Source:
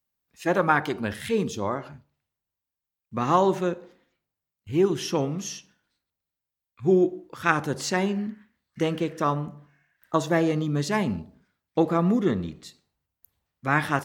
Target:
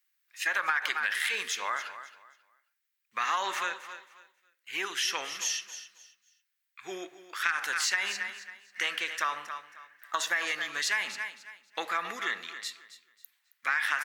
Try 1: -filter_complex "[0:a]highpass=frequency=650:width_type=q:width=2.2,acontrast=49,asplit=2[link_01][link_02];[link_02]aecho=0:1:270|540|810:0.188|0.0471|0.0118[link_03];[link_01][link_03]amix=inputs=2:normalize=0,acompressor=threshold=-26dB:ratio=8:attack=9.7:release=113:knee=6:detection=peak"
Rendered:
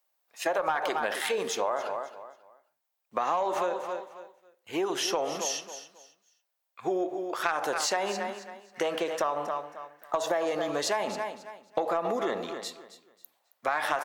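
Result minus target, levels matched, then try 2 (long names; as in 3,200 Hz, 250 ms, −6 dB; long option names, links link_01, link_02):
500 Hz band +15.5 dB
-filter_complex "[0:a]highpass=frequency=1800:width_type=q:width=2.2,acontrast=49,asplit=2[link_01][link_02];[link_02]aecho=0:1:270|540|810:0.188|0.0471|0.0118[link_03];[link_01][link_03]amix=inputs=2:normalize=0,acompressor=threshold=-26dB:ratio=8:attack=9.7:release=113:knee=6:detection=peak"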